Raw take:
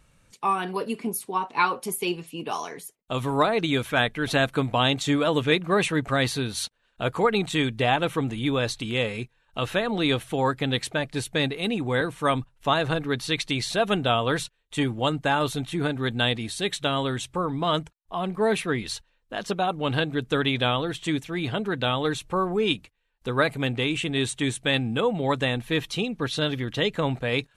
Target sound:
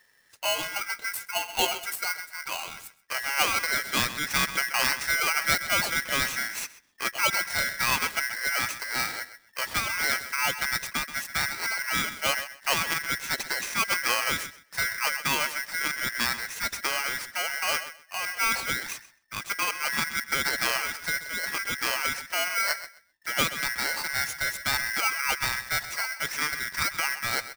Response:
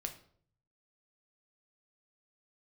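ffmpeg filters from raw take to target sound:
-filter_complex "[0:a]asplit=2[link_01][link_02];[link_02]adelay=129,lowpass=frequency=2800:poles=1,volume=-12dB,asplit=2[link_03][link_04];[link_04]adelay=129,lowpass=frequency=2800:poles=1,volume=0.2,asplit=2[link_05][link_06];[link_06]adelay=129,lowpass=frequency=2800:poles=1,volume=0.2[link_07];[link_01][link_03][link_05][link_07]amix=inputs=4:normalize=0,aeval=exprs='val(0)*sgn(sin(2*PI*1800*n/s))':channel_layout=same,volume=-3.5dB"

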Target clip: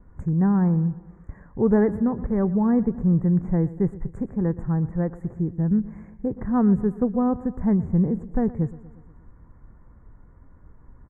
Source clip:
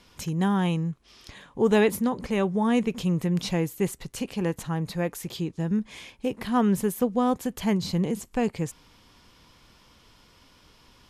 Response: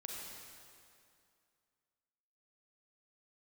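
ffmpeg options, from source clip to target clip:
-filter_complex "[0:a]asuperstop=centerf=3800:order=12:qfactor=0.73,adynamicsmooth=sensitivity=2:basefreq=5900,aemphasis=mode=reproduction:type=riaa,asplit=2[link_01][link_02];[link_02]aecho=0:1:119|238|357|476|595:0.126|0.0718|0.0409|0.0233|0.0133[link_03];[link_01][link_03]amix=inputs=2:normalize=0,adynamicequalizer=threshold=0.00562:dfrequency=2600:dqfactor=0.7:tfrequency=2600:tqfactor=0.7:attack=5:release=100:ratio=0.375:range=3.5:mode=cutabove:tftype=highshelf,volume=-3.5dB"

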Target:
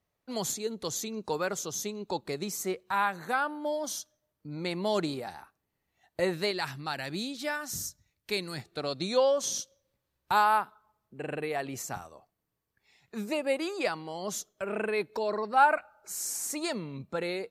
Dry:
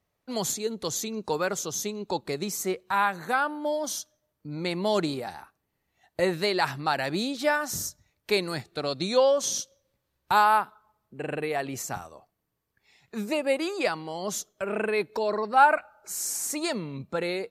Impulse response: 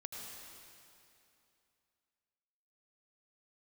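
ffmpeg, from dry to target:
-filter_complex "[0:a]asettb=1/sr,asplit=3[link_01][link_02][link_03];[link_01]atrim=end=6.514[link_04];[link_02]atrim=start=6.51:end=8.58,asetpts=PTS-STARTPTS,afade=type=in:duration=0.004:curve=qsin,afade=type=out:start_time=2.066:duration=0.004:curve=qsin,equalizer=frequency=690:width_type=o:width=2.4:gain=-7[link_05];[link_03]atrim=start=8.576[link_06];[link_04][link_05]acrossfade=duration=0.004:curve1=hsin:curve2=qsin[link_07];[link_07][link_06]acrossfade=duration=0.004:curve1=qsin:curve2=hsin,volume=-3.5dB"

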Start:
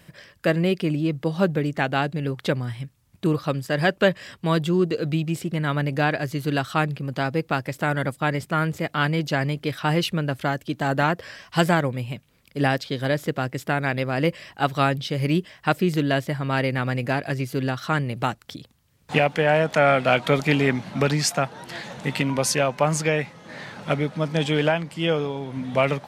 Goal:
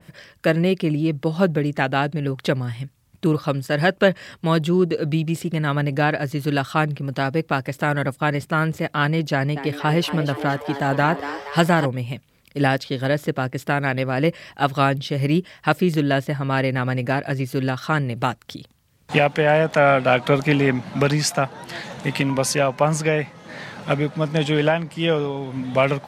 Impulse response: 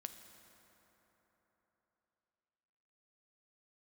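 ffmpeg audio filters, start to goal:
-filter_complex "[0:a]asettb=1/sr,asplit=3[link_01][link_02][link_03];[link_01]atrim=end=9.324[link_04];[link_02]atrim=start=9.32:end=11.86,asetpts=PTS-STARTPTS,afade=type=in:duration=0.004:curve=qsin,afade=type=out:start_time=2.536:duration=0.004:curve=qsin,asplit=8[link_05][link_06][link_07][link_08][link_09][link_10][link_11][link_12];[link_06]adelay=236,afreqshift=140,volume=-11.5dB[link_13];[link_07]adelay=472,afreqshift=280,volume=-16.1dB[link_14];[link_08]adelay=708,afreqshift=420,volume=-20.7dB[link_15];[link_09]adelay=944,afreqshift=560,volume=-25.2dB[link_16];[link_10]adelay=1180,afreqshift=700,volume=-29.8dB[link_17];[link_11]adelay=1416,afreqshift=840,volume=-34.4dB[link_18];[link_12]adelay=1652,afreqshift=980,volume=-39dB[link_19];[link_05][link_13][link_14][link_15][link_16][link_17][link_18][link_19]amix=inputs=8:normalize=0,atrim=end_sample=112014[link_20];[link_03]atrim=start=11.856[link_21];[link_04][link_20]acrossfade=duration=0.004:curve1=hsin:curve2=qsin[link_22];[link_22][link_21]acrossfade=duration=0.004:curve1=qsin:curve2=hsin,adynamicequalizer=threshold=0.0158:dfrequency=2100:dqfactor=0.7:tfrequency=2100:tqfactor=0.7:attack=5:release=100:ratio=0.375:range=2:mode=cutabove:tftype=highshelf,volume=2.5dB"

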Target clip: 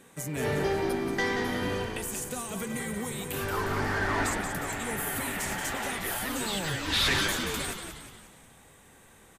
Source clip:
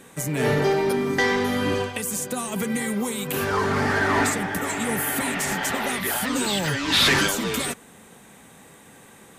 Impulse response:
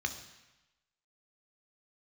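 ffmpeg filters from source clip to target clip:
-filter_complex "[0:a]asubboost=boost=4.5:cutoff=79,asplit=7[link_01][link_02][link_03][link_04][link_05][link_06][link_07];[link_02]adelay=180,afreqshift=-59,volume=-7dB[link_08];[link_03]adelay=360,afreqshift=-118,volume=-13dB[link_09];[link_04]adelay=540,afreqshift=-177,volume=-19dB[link_10];[link_05]adelay=720,afreqshift=-236,volume=-25.1dB[link_11];[link_06]adelay=900,afreqshift=-295,volume=-31.1dB[link_12];[link_07]adelay=1080,afreqshift=-354,volume=-37.1dB[link_13];[link_01][link_08][link_09][link_10][link_11][link_12][link_13]amix=inputs=7:normalize=0,volume=-7.5dB"

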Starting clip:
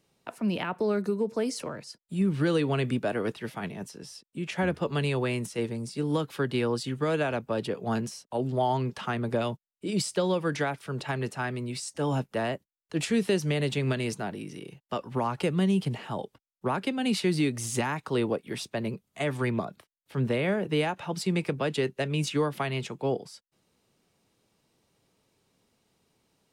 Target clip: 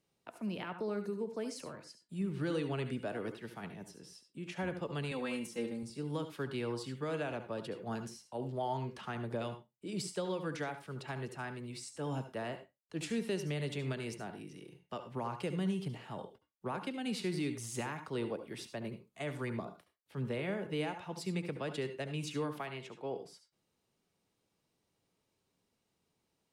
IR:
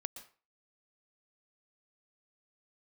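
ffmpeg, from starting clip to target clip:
-filter_complex "[0:a]asettb=1/sr,asplit=3[link_01][link_02][link_03];[link_01]atrim=end=5.114[link_04];[link_02]atrim=start=5.11:end=5.83,asetpts=PTS-STARTPTS,afade=type=in:duration=0.004:curve=qsin,afade=type=out:start_time=0.716:duration=0.004:curve=qsin,aecho=1:1:3.8:0.9,atrim=end_sample=31752[link_05];[link_03]atrim=start=5.826[link_06];[link_04][link_05]acrossfade=duration=0.004:curve1=hsin:curve2=qsin[link_07];[link_07][link_06]acrossfade=duration=0.004:curve1=qsin:curve2=hsin,asettb=1/sr,asplit=3[link_08][link_09][link_10];[link_08]atrim=end=22.604[link_11];[link_09]atrim=start=22.6:end=23.16,asetpts=PTS-STARTPTS,afade=type=in:duration=0.004:curve=qsin,afade=type=out:start_time=0.556:duration=0.004:curve=qsin,bass=frequency=250:gain=-8,treble=frequency=4000:gain=-6[link_12];[link_10]atrim=start=23.156[link_13];[link_11][link_12]acrossfade=duration=0.004:curve1=hsin:curve2=qsin[link_14];[link_14][link_13]acrossfade=duration=0.004:curve1=qsin:curve2=hsin[link_15];[1:a]atrim=start_sample=2205,asetrate=74970,aresample=44100[link_16];[link_15][link_16]afir=irnorm=-1:irlink=0,volume=-3dB"

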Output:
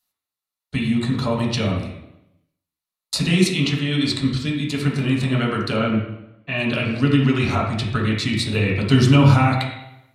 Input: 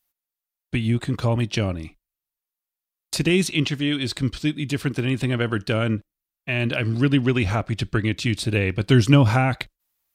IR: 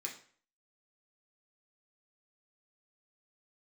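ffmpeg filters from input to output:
-filter_complex "[0:a]asettb=1/sr,asplit=3[link_01][link_02][link_03];[link_01]atrim=end=5.764[link_04];[link_02]atrim=start=5.76:end=6.58,asetpts=PTS-STARTPTS,afade=type=in:duration=0.004:curve=qsin,afade=type=out:start_time=0.816:duration=0.004:curve=qsin,lowpass=4000[link_05];[link_03]atrim=start=6.576[link_06];[link_04][link_05]acrossfade=duration=0.004:curve1=hsin:curve2=qsin[link_07];[link_07][link_06]acrossfade=duration=0.004:curve1=qsin:curve2=hsin[link_08];[1:a]atrim=start_sample=2205,asetrate=23814,aresample=44100[link_09];[link_08][link_09]afir=irnorm=-1:irlink=0"

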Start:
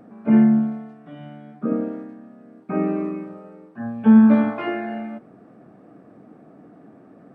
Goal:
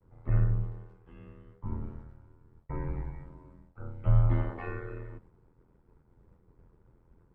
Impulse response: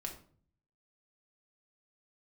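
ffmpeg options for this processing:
-af "aeval=exprs='val(0)*sin(2*PI*42*n/s)':channel_layout=same,agate=range=-33dB:threshold=-45dB:ratio=3:detection=peak,afreqshift=-290,volume=-7.5dB"

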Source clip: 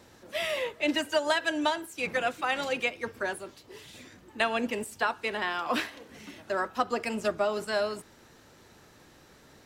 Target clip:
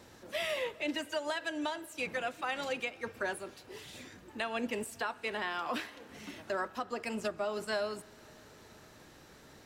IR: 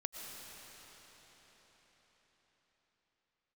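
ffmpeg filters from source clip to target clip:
-filter_complex "[0:a]alimiter=level_in=0.5dB:limit=-24dB:level=0:latency=1:release=494,volume=-0.5dB,asplit=2[link_01][link_02];[1:a]atrim=start_sample=2205[link_03];[link_02][link_03]afir=irnorm=-1:irlink=0,volume=-18.5dB[link_04];[link_01][link_04]amix=inputs=2:normalize=0,volume=-1dB"

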